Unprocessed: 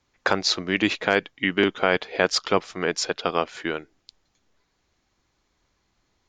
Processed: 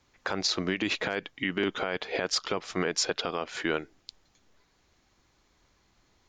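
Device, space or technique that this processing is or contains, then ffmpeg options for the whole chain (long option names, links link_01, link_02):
stacked limiters: -af "alimiter=limit=-11dB:level=0:latency=1:release=223,alimiter=limit=-15dB:level=0:latency=1:release=130,alimiter=limit=-20.5dB:level=0:latency=1:release=73,volume=3.5dB"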